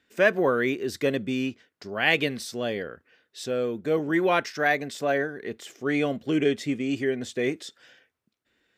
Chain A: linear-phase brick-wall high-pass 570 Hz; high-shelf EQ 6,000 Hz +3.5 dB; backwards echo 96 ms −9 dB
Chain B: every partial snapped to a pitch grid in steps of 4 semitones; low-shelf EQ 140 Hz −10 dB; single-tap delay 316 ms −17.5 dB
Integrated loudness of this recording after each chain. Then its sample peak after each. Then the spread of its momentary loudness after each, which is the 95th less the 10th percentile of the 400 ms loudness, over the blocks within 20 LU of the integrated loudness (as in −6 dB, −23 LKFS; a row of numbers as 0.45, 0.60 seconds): −29.0, −23.5 LKFS; −8.0, −4.0 dBFS; 16, 14 LU